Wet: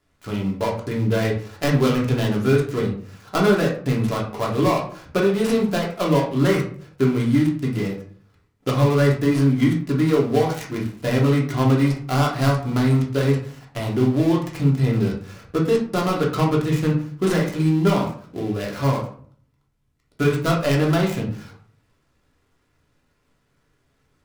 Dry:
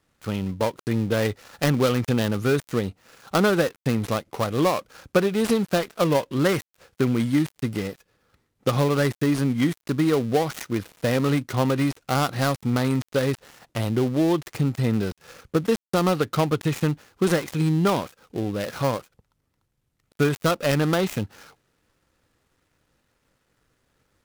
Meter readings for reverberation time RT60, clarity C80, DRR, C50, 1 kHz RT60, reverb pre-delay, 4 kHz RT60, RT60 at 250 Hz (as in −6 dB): 0.50 s, 11.5 dB, −2.5 dB, 7.0 dB, 0.50 s, 3 ms, 0.30 s, 0.65 s